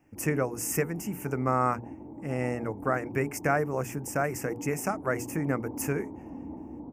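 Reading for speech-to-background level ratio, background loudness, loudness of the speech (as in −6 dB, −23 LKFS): 12.0 dB, −42.5 LKFS, −30.5 LKFS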